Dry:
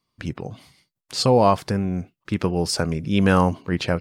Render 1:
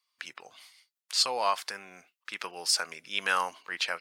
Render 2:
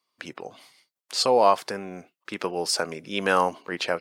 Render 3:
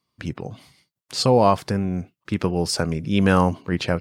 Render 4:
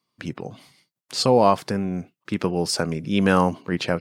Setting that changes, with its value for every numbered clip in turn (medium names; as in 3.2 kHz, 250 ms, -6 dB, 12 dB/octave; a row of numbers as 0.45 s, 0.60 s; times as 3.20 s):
high-pass, cutoff frequency: 1.4 kHz, 470 Hz, 53 Hz, 150 Hz